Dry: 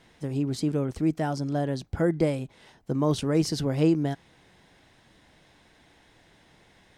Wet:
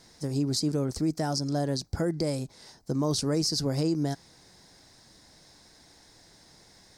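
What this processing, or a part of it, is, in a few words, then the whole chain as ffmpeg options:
over-bright horn tweeter: -af "highshelf=frequency=3800:width_type=q:width=3:gain=8,alimiter=limit=-18.5dB:level=0:latency=1:release=101"

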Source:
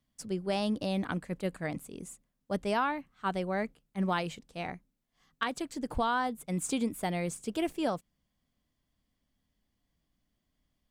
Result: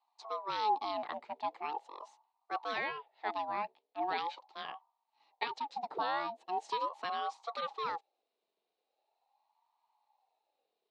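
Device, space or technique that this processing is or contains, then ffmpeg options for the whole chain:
voice changer toy: -af "aeval=exprs='val(0)*sin(2*PI*680*n/s+680*0.4/0.41*sin(2*PI*0.41*n/s))':channel_layout=same,highpass=490,equalizer=frequency=570:width_type=q:width=4:gain=-4,equalizer=frequency=840:width_type=q:width=4:gain=10,equalizer=frequency=1500:width_type=q:width=4:gain=-8,equalizer=frequency=4100:width_type=q:width=4:gain=6,lowpass=frequency=4600:width=0.5412,lowpass=frequency=4600:width=1.3066,volume=-1.5dB"

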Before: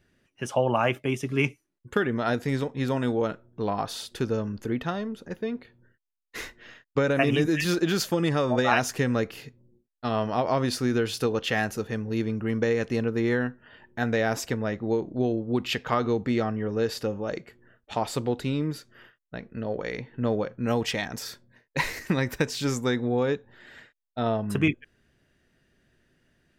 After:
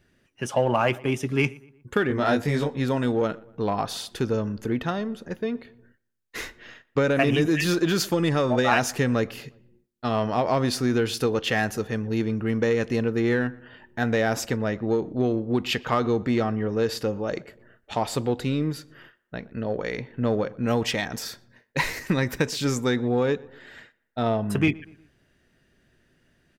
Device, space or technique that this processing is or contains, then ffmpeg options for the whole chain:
parallel distortion: -filter_complex "[0:a]asettb=1/sr,asplit=3[link_01][link_02][link_03];[link_01]atrim=end=2.084[link_04];[link_02]atrim=start=2.08:end=2.77,asetpts=PTS-STARTPTS,afade=type=in:duration=0.004:curve=qsin,afade=type=out:start_time=0.686:duration=0.004:curve=qsin,asplit=2[link_05][link_06];[link_06]adelay=20,volume=-2.5dB[link_07];[link_05][link_07]amix=inputs=2:normalize=0,atrim=end_sample=30429[link_08];[link_03]atrim=start=2.766[link_09];[link_04][link_08]acrossfade=duration=0.004:curve1=hsin:curve2=qsin[link_10];[link_10][link_09]acrossfade=duration=0.004:curve1=qsin:curve2=hsin,asplit=2[link_11][link_12];[link_12]asoftclip=type=hard:threshold=-23.5dB,volume=-9dB[link_13];[link_11][link_13]amix=inputs=2:normalize=0,asplit=2[link_14][link_15];[link_15]adelay=120,lowpass=frequency=2300:poles=1,volume=-22dB,asplit=2[link_16][link_17];[link_17]adelay=120,lowpass=frequency=2300:poles=1,volume=0.46,asplit=2[link_18][link_19];[link_19]adelay=120,lowpass=frequency=2300:poles=1,volume=0.46[link_20];[link_14][link_16][link_18][link_20]amix=inputs=4:normalize=0"

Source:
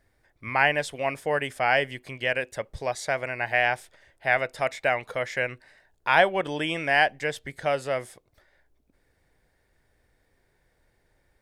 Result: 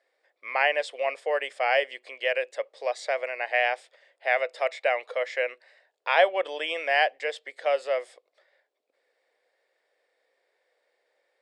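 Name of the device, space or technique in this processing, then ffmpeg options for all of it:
phone speaker on a table: -af "highpass=frequency=490:width=0.5412,highpass=frequency=490:width=1.3066,equalizer=frequency=510:width_type=q:width=4:gain=6,equalizer=frequency=910:width_type=q:width=4:gain=-5,equalizer=frequency=1500:width_type=q:width=4:gain=-6,equalizer=frequency=6200:width_type=q:width=4:gain=-9,lowpass=frequency=7300:width=0.5412,lowpass=frequency=7300:width=1.3066"

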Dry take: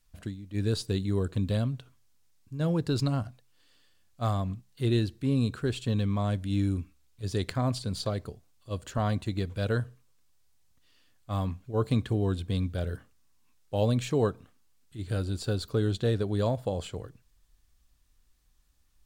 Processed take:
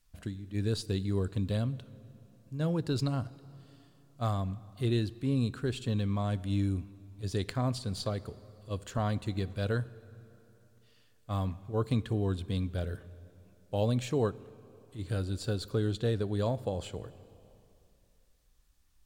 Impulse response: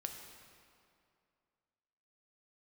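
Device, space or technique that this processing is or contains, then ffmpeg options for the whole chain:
ducked reverb: -filter_complex "[0:a]asplit=3[link_01][link_02][link_03];[1:a]atrim=start_sample=2205[link_04];[link_02][link_04]afir=irnorm=-1:irlink=0[link_05];[link_03]apad=whole_len=840314[link_06];[link_05][link_06]sidechaincompress=threshold=-31dB:ratio=8:attack=35:release=1460,volume=-3dB[link_07];[link_01][link_07]amix=inputs=2:normalize=0,volume=-4.5dB"

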